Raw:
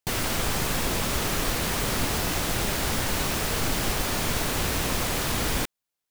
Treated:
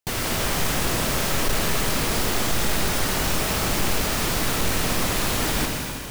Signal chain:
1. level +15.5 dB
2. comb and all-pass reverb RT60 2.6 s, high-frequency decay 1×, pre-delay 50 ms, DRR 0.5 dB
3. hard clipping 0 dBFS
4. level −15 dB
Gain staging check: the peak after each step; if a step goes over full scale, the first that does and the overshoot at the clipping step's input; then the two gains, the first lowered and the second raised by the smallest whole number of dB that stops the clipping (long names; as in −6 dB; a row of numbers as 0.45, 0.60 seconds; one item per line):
+3.0, +6.0, 0.0, −15.0 dBFS
step 1, 6.0 dB
step 1 +9.5 dB, step 4 −9 dB